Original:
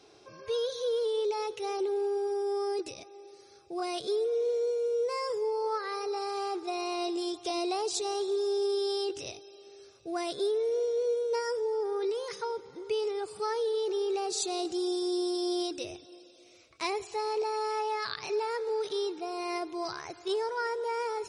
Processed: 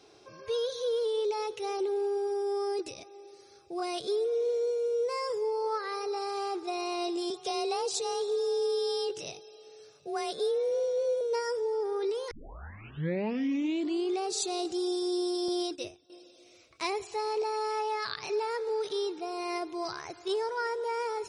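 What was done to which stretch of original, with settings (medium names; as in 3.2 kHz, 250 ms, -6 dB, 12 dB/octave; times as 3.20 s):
7.30–11.21 s: frequency shift +33 Hz
12.31 s: tape start 1.95 s
15.48–16.10 s: gate -41 dBFS, range -14 dB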